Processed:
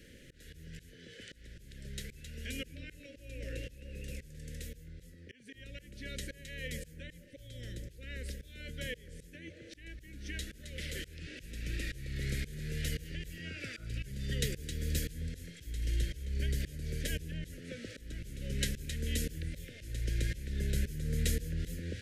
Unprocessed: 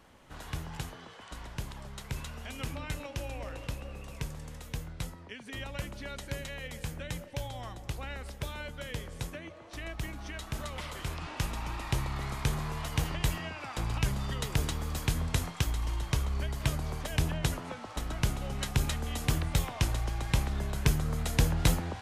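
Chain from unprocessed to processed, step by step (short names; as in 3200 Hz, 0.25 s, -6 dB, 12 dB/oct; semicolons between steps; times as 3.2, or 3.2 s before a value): auto swell 0.552 s; painted sound noise, 13.45–13.9, 610–1500 Hz -49 dBFS; elliptic band-stop 510–1700 Hz, stop band 50 dB; gain +5.5 dB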